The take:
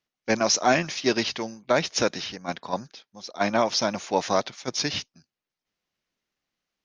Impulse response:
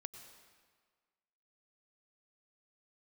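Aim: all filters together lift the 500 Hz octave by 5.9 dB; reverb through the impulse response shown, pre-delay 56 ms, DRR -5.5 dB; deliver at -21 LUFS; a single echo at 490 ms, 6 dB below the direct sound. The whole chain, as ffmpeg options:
-filter_complex "[0:a]equalizer=f=500:t=o:g=7.5,aecho=1:1:490:0.501,asplit=2[s0][s1];[1:a]atrim=start_sample=2205,adelay=56[s2];[s1][s2]afir=irnorm=-1:irlink=0,volume=2.99[s3];[s0][s3]amix=inputs=2:normalize=0,volume=0.531"

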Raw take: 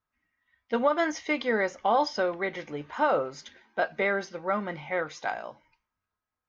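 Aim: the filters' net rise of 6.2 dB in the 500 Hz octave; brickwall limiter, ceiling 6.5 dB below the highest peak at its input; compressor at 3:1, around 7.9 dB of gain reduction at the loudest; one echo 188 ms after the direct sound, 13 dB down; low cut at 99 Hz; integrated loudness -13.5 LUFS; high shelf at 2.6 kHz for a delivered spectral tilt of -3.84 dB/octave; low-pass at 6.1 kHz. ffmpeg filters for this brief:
-af "highpass=99,lowpass=6100,equalizer=f=500:t=o:g=7,highshelf=f=2600:g=7,acompressor=threshold=0.0562:ratio=3,alimiter=limit=0.0944:level=0:latency=1,aecho=1:1:188:0.224,volume=7.94"

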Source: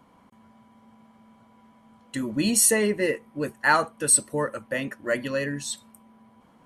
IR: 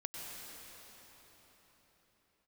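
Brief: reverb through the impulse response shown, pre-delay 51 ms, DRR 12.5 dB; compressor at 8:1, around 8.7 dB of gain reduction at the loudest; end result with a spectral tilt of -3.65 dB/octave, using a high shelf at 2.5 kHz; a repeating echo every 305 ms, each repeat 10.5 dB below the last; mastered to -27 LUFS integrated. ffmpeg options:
-filter_complex "[0:a]highshelf=f=2500:g=-5,acompressor=threshold=0.0562:ratio=8,aecho=1:1:305|610|915:0.299|0.0896|0.0269,asplit=2[s0][s1];[1:a]atrim=start_sample=2205,adelay=51[s2];[s1][s2]afir=irnorm=-1:irlink=0,volume=0.237[s3];[s0][s3]amix=inputs=2:normalize=0,volume=1.5"

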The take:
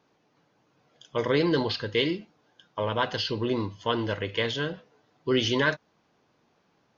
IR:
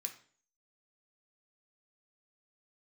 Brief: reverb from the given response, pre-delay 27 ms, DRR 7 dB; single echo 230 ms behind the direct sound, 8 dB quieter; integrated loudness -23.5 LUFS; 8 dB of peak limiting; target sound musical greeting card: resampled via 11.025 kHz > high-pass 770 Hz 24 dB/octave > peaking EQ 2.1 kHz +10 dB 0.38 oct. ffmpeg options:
-filter_complex "[0:a]alimiter=limit=0.119:level=0:latency=1,aecho=1:1:230:0.398,asplit=2[s0][s1];[1:a]atrim=start_sample=2205,adelay=27[s2];[s1][s2]afir=irnorm=-1:irlink=0,volume=0.631[s3];[s0][s3]amix=inputs=2:normalize=0,aresample=11025,aresample=44100,highpass=f=770:w=0.5412,highpass=f=770:w=1.3066,equalizer=f=2100:t=o:w=0.38:g=10,volume=2.37"

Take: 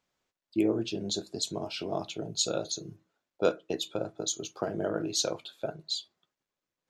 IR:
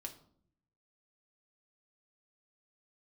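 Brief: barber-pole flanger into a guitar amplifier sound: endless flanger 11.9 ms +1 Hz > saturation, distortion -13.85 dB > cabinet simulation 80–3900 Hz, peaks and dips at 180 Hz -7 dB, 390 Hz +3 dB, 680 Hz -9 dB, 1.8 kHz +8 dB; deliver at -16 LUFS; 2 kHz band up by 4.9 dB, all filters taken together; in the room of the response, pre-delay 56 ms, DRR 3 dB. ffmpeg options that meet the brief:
-filter_complex "[0:a]equalizer=f=2000:t=o:g=4,asplit=2[s0][s1];[1:a]atrim=start_sample=2205,adelay=56[s2];[s1][s2]afir=irnorm=-1:irlink=0,volume=1.06[s3];[s0][s3]amix=inputs=2:normalize=0,asplit=2[s4][s5];[s5]adelay=11.9,afreqshift=1[s6];[s4][s6]amix=inputs=2:normalize=1,asoftclip=threshold=0.075,highpass=80,equalizer=f=180:t=q:w=4:g=-7,equalizer=f=390:t=q:w=4:g=3,equalizer=f=680:t=q:w=4:g=-9,equalizer=f=1800:t=q:w=4:g=8,lowpass=f=3900:w=0.5412,lowpass=f=3900:w=1.3066,volume=8.91"

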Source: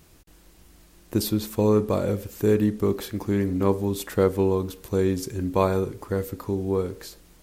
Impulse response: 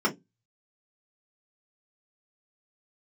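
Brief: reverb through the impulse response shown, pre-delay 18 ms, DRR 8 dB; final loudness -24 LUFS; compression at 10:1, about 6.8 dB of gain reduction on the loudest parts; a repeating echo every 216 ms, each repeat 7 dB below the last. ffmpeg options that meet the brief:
-filter_complex "[0:a]acompressor=threshold=0.0794:ratio=10,aecho=1:1:216|432|648|864|1080:0.447|0.201|0.0905|0.0407|0.0183,asplit=2[s0][s1];[1:a]atrim=start_sample=2205,adelay=18[s2];[s1][s2]afir=irnorm=-1:irlink=0,volume=0.0944[s3];[s0][s3]amix=inputs=2:normalize=0,volume=1.33"

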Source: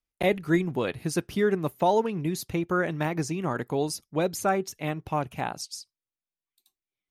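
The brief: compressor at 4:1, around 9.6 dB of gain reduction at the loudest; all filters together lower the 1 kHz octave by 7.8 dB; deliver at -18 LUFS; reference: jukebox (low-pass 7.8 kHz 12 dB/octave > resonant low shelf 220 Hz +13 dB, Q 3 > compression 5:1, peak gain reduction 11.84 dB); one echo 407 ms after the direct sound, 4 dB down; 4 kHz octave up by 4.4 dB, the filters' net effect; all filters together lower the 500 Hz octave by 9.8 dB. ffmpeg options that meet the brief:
-af "equalizer=f=500:t=o:g=-5.5,equalizer=f=1000:t=o:g=-7.5,equalizer=f=4000:t=o:g=6.5,acompressor=threshold=0.0251:ratio=4,lowpass=7800,lowshelf=f=220:t=q:w=3:g=13,aecho=1:1:407:0.631,acompressor=threshold=0.0562:ratio=5,volume=3.76"

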